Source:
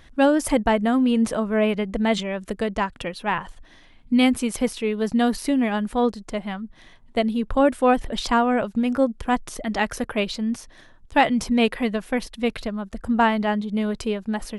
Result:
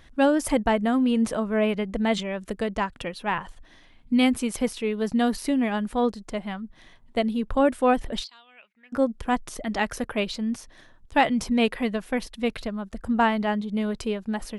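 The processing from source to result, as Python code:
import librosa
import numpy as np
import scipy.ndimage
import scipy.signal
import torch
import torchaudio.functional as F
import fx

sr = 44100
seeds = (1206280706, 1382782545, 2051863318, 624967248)

y = fx.bandpass_q(x, sr, hz=fx.line((8.23, 4700.0), (8.92, 1600.0)), q=11.0, at=(8.23, 8.92), fade=0.02)
y = y * 10.0 ** (-2.5 / 20.0)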